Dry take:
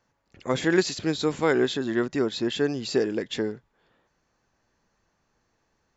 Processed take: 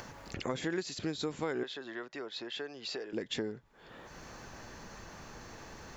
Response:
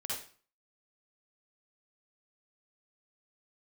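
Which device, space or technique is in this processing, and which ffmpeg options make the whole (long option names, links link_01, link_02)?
upward and downward compression: -filter_complex "[0:a]acompressor=mode=upward:threshold=-29dB:ratio=2.5,acompressor=threshold=-33dB:ratio=5,asettb=1/sr,asplit=3[link_01][link_02][link_03];[link_01]atrim=end=1.634[link_04];[link_02]atrim=start=1.63:end=3.13,asetpts=PTS-STARTPTS,afade=type=in:duration=0.004:curve=qsin,afade=type=out:start_time=1.496:duration=0.004:curve=qsin,acrossover=split=440 5800:gain=0.141 1 0.0891[link_05][link_06][link_07];[link_05][link_06][link_07]amix=inputs=3:normalize=0[link_08];[link_03]atrim=start=3.126[link_09];[link_04][link_08]acrossfade=duration=0.004:curve1=hsin:curve2=qsin[link_10];[link_10][link_09]acrossfade=duration=0.004:curve1=qsin:curve2=hsin"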